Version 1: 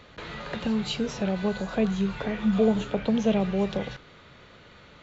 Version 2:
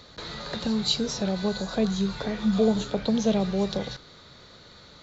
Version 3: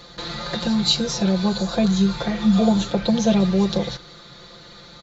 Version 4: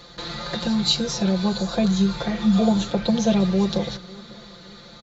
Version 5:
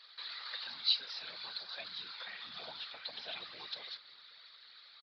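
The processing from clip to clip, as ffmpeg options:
ffmpeg -i in.wav -af "highshelf=frequency=3400:width_type=q:width=3:gain=6" out.wav
ffmpeg -i in.wav -af "aecho=1:1:5.8:0.94,volume=3.5dB" out.wav
ffmpeg -i in.wav -filter_complex "[0:a]asplit=2[link_01][link_02];[link_02]adelay=549,lowpass=frequency=2000:poles=1,volume=-21.5dB,asplit=2[link_03][link_04];[link_04]adelay=549,lowpass=frequency=2000:poles=1,volume=0.42,asplit=2[link_05][link_06];[link_06]adelay=549,lowpass=frequency=2000:poles=1,volume=0.42[link_07];[link_01][link_03][link_05][link_07]amix=inputs=4:normalize=0,volume=-1.5dB" out.wav
ffmpeg -i in.wav -af "asuperpass=centerf=3400:order=4:qfactor=0.62,afftfilt=real='hypot(re,im)*cos(2*PI*random(0))':imag='hypot(re,im)*sin(2*PI*random(1))':win_size=512:overlap=0.75,aresample=11025,aresample=44100,volume=-3dB" out.wav

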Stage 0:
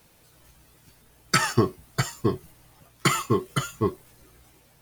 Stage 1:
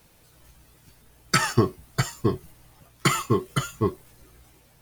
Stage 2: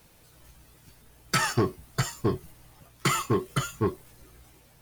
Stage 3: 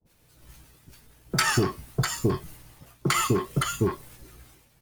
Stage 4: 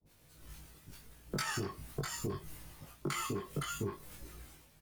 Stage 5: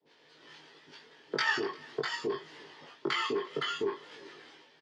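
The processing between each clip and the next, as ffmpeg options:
ffmpeg -i in.wav -af "lowshelf=frequency=79:gain=5.5" out.wav
ffmpeg -i in.wav -af "asoftclip=type=tanh:threshold=-17dB" out.wav
ffmpeg -i in.wav -filter_complex "[0:a]acompressor=threshold=-25dB:ratio=6,agate=range=-33dB:threshold=-49dB:ratio=3:detection=peak,acrossover=split=720[link_01][link_02];[link_02]adelay=50[link_03];[link_01][link_03]amix=inputs=2:normalize=0,volume=6dB" out.wav
ffmpeg -i in.wav -filter_complex "[0:a]acompressor=threshold=-33dB:ratio=5,asplit=2[link_01][link_02];[link_02]adelay=20,volume=-2dB[link_03];[link_01][link_03]amix=inputs=2:normalize=0,volume=-4dB" out.wav
ffmpeg -i in.wav -af "highpass=frequency=200:width=0.5412,highpass=frequency=200:width=1.3066,equalizer=frequency=200:width_type=q:width=4:gain=-10,equalizer=frequency=430:width_type=q:width=4:gain=9,equalizer=frequency=920:width_type=q:width=4:gain=7,equalizer=frequency=1800:width_type=q:width=4:gain=10,equalizer=frequency=3200:width_type=q:width=4:gain=9,equalizer=frequency=4800:width_type=q:width=4:gain=5,lowpass=frequency=5100:width=0.5412,lowpass=frequency=5100:width=1.3066,aecho=1:1:348:0.0631,volume=2.5dB" out.wav

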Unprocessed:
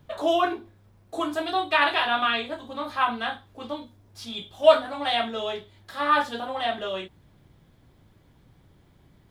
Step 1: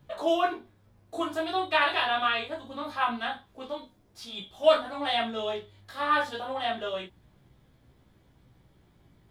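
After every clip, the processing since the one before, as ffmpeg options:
ffmpeg -i in.wav -af "flanger=delay=15:depth=4.4:speed=0.25" out.wav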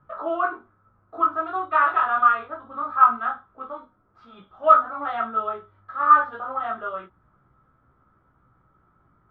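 ffmpeg -i in.wav -af "lowpass=frequency=1300:width_type=q:width=16,volume=-4dB" out.wav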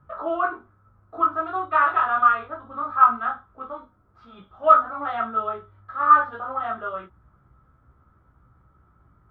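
ffmpeg -i in.wav -af "equalizer=frequency=66:width_type=o:width=1.6:gain=10.5" out.wav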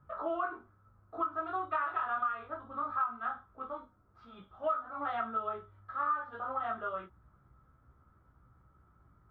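ffmpeg -i in.wav -af "acompressor=threshold=-24dB:ratio=6,volume=-6dB" out.wav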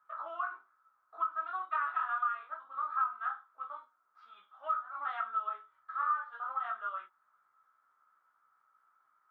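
ffmpeg -i in.wav -af "highpass=frequency=1200:width_type=q:width=1.5,volume=-3dB" out.wav

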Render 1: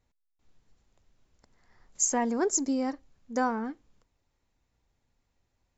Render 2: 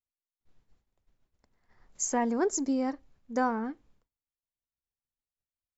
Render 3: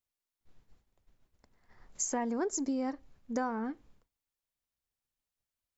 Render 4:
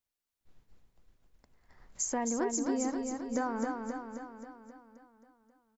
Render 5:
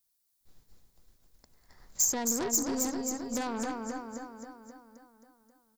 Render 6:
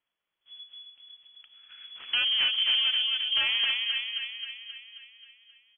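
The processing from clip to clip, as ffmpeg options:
ffmpeg -i in.wav -af "agate=range=-33dB:threshold=-57dB:ratio=3:detection=peak,highshelf=frequency=5500:gain=-9" out.wav
ffmpeg -i in.wav -af "acompressor=threshold=-36dB:ratio=3,volume=3.5dB" out.wav
ffmpeg -i in.wav -af "aecho=1:1:266|532|798|1064|1330|1596|1862|2128:0.596|0.345|0.2|0.116|0.0674|0.0391|0.0227|0.0132" out.wav
ffmpeg -i in.wav -af "aeval=exprs='0.106*(cos(1*acos(clip(val(0)/0.106,-1,1)))-cos(1*PI/2))+0.0211*(cos(5*acos(clip(val(0)/0.106,-1,1)))-cos(5*PI/2))+0.015*(cos(6*acos(clip(val(0)/0.106,-1,1)))-cos(6*PI/2))+0.0188*(cos(8*acos(clip(val(0)/0.106,-1,1)))-cos(8*PI/2))':channel_layout=same,aexciter=amount=3:drive=5.3:freq=3900,volume=-4.5dB" out.wav
ffmpeg -i in.wav -af "lowpass=frequency=2900:width_type=q:width=0.5098,lowpass=frequency=2900:width_type=q:width=0.6013,lowpass=frequency=2900:width_type=q:width=0.9,lowpass=frequency=2900:width_type=q:width=2.563,afreqshift=-3400,volume=7.5dB" out.wav

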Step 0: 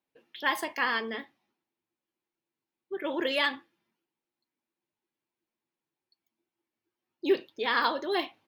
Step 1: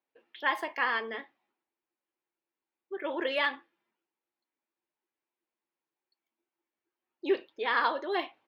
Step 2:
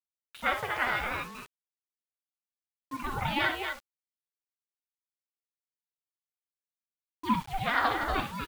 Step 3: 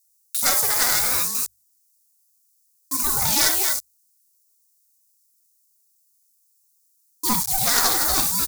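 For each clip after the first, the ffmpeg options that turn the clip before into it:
ffmpeg -i in.wav -af "bass=frequency=250:gain=-14,treble=frequency=4000:gain=-14" out.wav
ffmpeg -i in.wav -filter_complex "[0:a]asplit=2[link_01][link_02];[link_02]aecho=0:1:61.22|239.1:0.398|0.501[link_03];[link_01][link_03]amix=inputs=2:normalize=0,acrusher=bits=7:mix=0:aa=0.000001,aeval=exprs='val(0)*sin(2*PI*440*n/s+440*0.55/0.7*sin(2*PI*0.7*n/s))':channel_layout=same,volume=2.5dB" out.wav
ffmpeg -i in.wav -af "bandreject=frequency=50:width_type=h:width=6,bandreject=frequency=100:width_type=h:width=6,aeval=exprs='clip(val(0),-1,0.0355)':channel_layout=same,aexciter=amount=14:drive=7.8:freq=4600,volume=4dB" out.wav

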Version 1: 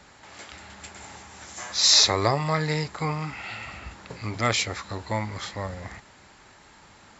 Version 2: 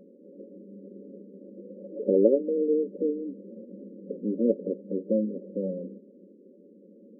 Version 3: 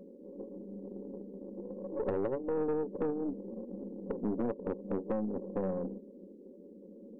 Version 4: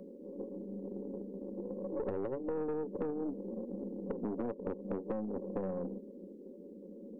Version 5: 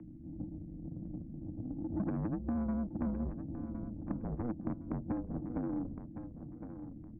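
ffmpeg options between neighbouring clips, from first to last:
ffmpeg -i in.wav -af "afftfilt=real='re*between(b*sr/4096,180,580)':imag='im*between(b*sr/4096,180,580)':win_size=4096:overlap=0.75,volume=8dB" out.wav
ffmpeg -i in.wav -af "acompressor=threshold=-28dB:ratio=16,aeval=exprs='(tanh(28.2*val(0)+0.45)-tanh(0.45))/28.2':channel_layout=same,volume=3dB" out.wav
ffmpeg -i in.wav -filter_complex "[0:a]acrossover=split=380|880[link_01][link_02][link_03];[link_01]acompressor=threshold=-40dB:ratio=4[link_04];[link_02]acompressor=threshold=-42dB:ratio=4[link_05];[link_03]acompressor=threshold=-54dB:ratio=4[link_06];[link_04][link_05][link_06]amix=inputs=3:normalize=0,volume=2dB" out.wav
ffmpeg -i in.wav -filter_complex "[0:a]asplit=2[link_01][link_02];[link_02]aecho=0:1:1062|2124|3186:0.316|0.0885|0.0248[link_03];[link_01][link_03]amix=inputs=2:normalize=0,highpass=frequency=330:width_type=q:width=0.5412,highpass=frequency=330:width_type=q:width=1.307,lowpass=frequency=2500:width_type=q:width=0.5176,lowpass=frequency=2500:width_type=q:width=0.7071,lowpass=frequency=2500:width_type=q:width=1.932,afreqshift=-240,volume=3dB" out.wav

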